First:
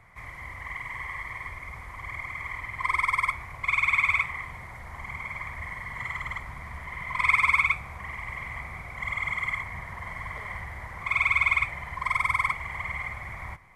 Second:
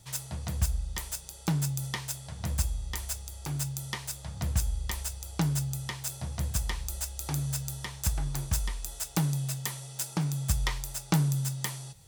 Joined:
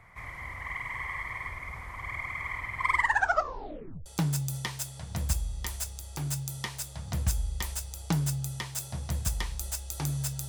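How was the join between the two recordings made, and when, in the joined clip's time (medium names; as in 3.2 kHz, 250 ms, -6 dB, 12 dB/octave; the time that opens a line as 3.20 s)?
first
2.92 s: tape stop 1.14 s
4.06 s: go over to second from 1.35 s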